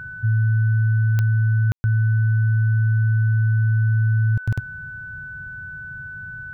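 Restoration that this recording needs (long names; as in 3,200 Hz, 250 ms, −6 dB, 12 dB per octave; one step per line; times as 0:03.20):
click removal
notch filter 1,500 Hz, Q 30
ambience match 0:01.72–0:01.84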